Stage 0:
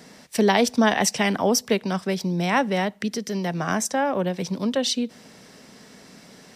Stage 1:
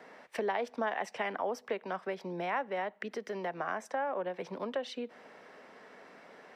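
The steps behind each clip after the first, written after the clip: three-band isolator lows -21 dB, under 380 Hz, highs -23 dB, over 2400 Hz; compressor 2.5:1, threshold -35 dBFS, peak gain reduction 12 dB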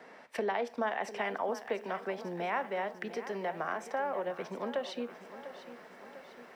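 reverb RT60 0.45 s, pre-delay 4 ms, DRR 13.5 dB; lo-fi delay 0.698 s, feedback 55%, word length 10-bit, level -13 dB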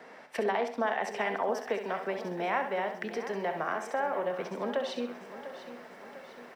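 feedback echo 66 ms, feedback 35%, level -8.5 dB; gain +2.5 dB

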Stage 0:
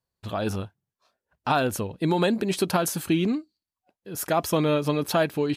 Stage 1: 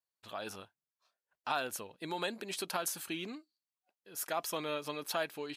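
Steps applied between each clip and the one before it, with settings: HPF 1100 Hz 6 dB/oct; gain -7 dB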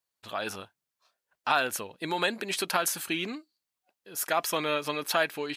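dynamic EQ 1900 Hz, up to +5 dB, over -50 dBFS, Q 1.1; gain +7 dB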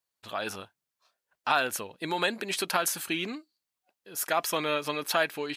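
nothing audible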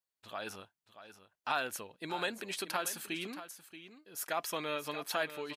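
echo 0.63 s -12.5 dB; gain -8 dB

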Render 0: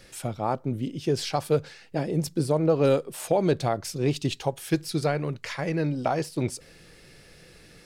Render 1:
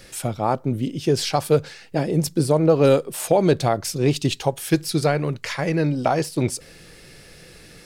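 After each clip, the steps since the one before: high shelf 7000 Hz +4 dB; gain +5.5 dB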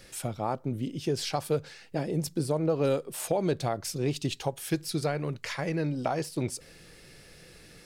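compressor 1.5:1, threshold -23 dBFS, peak gain reduction 4.5 dB; gain -6.5 dB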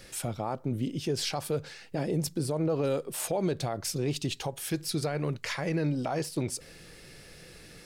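limiter -22.5 dBFS, peak gain reduction 7.5 dB; gain +2 dB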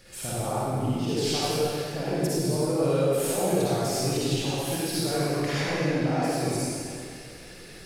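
reverb RT60 2.4 s, pre-delay 45 ms, DRR -10 dB; gain -4.5 dB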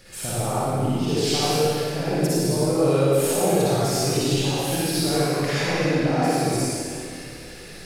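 flutter echo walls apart 10.1 m, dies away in 0.62 s; gain +3.5 dB

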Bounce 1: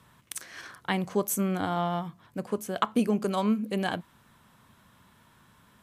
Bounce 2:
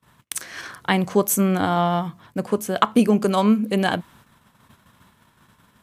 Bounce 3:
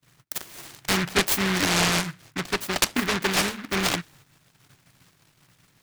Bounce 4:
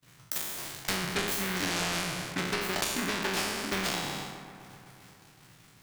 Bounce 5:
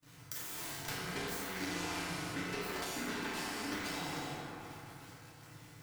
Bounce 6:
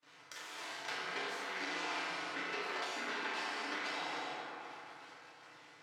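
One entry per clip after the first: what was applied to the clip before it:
gate -58 dBFS, range -28 dB; gain +8.5 dB
fixed phaser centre 330 Hz, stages 8; noise-modulated delay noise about 1600 Hz, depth 0.42 ms
spectral trails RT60 0.89 s; compressor 6:1, threshold -29 dBFS, peak gain reduction 14.5 dB; dark delay 0.128 s, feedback 76%, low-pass 1800 Hz, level -11.5 dB
compressor 6:1, threshold -38 dBFS, peak gain reduction 12 dB; flange 0.73 Hz, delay 0.1 ms, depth 1 ms, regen -71%; FDN reverb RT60 1.4 s, low-frequency decay 0.9×, high-frequency decay 0.4×, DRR -4.5 dB
BPF 500–4200 Hz; gain +2.5 dB

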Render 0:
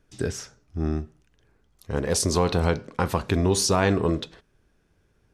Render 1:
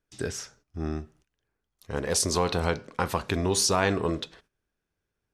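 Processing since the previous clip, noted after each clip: low shelf 480 Hz -6.5 dB; gate -58 dBFS, range -13 dB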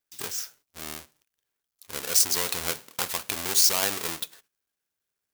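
half-waves squared off; tilt +4 dB/oct; gain -9 dB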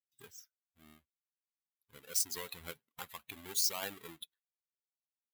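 per-bin expansion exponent 2; gain -9 dB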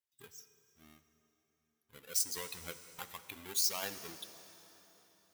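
plate-style reverb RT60 4.1 s, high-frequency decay 0.8×, DRR 10.5 dB

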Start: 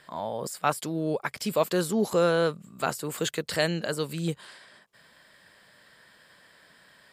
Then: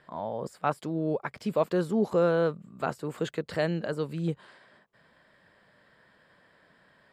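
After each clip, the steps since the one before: LPF 1100 Hz 6 dB/oct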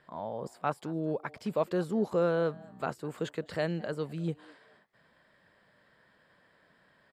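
frequency-shifting echo 0.21 s, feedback 31%, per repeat +140 Hz, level -24 dB; gain -3.5 dB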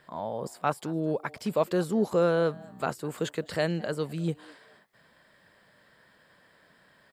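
high shelf 5100 Hz +9 dB; gain +3.5 dB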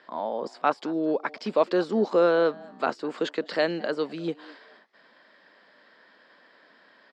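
Chebyshev band-pass 250–5100 Hz, order 3; gain +4.5 dB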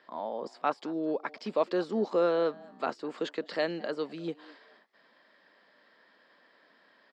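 notch 1500 Hz, Q 22; gain -5.5 dB

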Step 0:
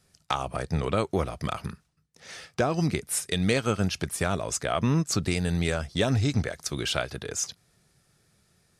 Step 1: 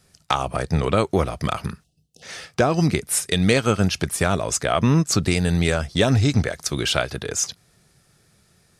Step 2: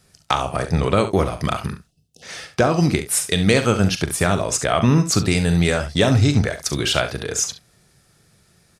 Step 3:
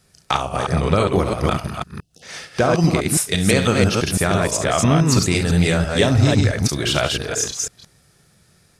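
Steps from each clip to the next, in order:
spectral delete 1.84–2.22, 780–2600 Hz; gain +6.5 dB
early reflections 41 ms -11.5 dB, 69 ms -12 dB; gain +1.5 dB
reverse delay 0.167 s, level -2 dB; gain -1 dB

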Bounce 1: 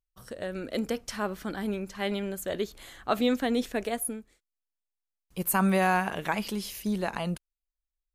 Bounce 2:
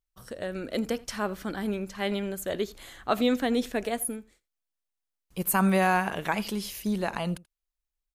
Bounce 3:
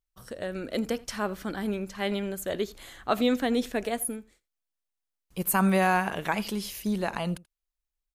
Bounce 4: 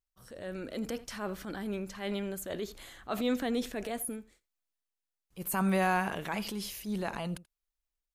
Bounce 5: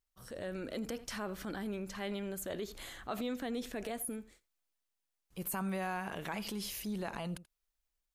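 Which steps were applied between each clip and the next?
echo 84 ms -22.5 dB; gain +1 dB
nothing audible
transient shaper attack -7 dB, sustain +3 dB; gain -4.5 dB
compressor 3:1, threshold -40 dBFS, peak gain reduction 12.5 dB; gain +2.5 dB

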